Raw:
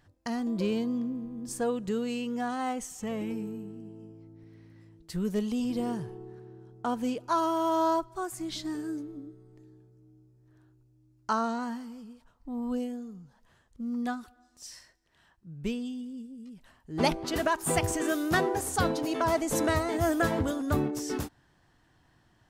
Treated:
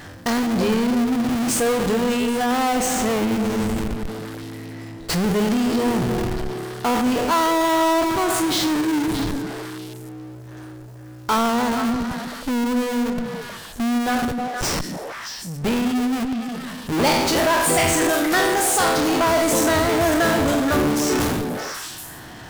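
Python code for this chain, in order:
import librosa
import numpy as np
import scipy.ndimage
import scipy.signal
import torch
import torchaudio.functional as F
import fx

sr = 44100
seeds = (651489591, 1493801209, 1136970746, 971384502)

p1 = fx.spec_trails(x, sr, decay_s=0.67)
p2 = fx.low_shelf(p1, sr, hz=110.0, db=-9.5)
p3 = fx.hum_notches(p2, sr, base_hz=50, count=4)
p4 = fx.schmitt(p3, sr, flips_db=-41.5)
p5 = p3 + (p4 * librosa.db_to_amplitude(-4.0))
p6 = fx.bass_treble(p5, sr, bass_db=-12, treble_db=2, at=(18.09, 18.97))
p7 = p6 + fx.echo_stepped(p6, sr, ms=156, hz=220.0, octaves=1.4, feedback_pct=70, wet_db=-4, dry=0)
y = fx.power_curve(p7, sr, exponent=0.5)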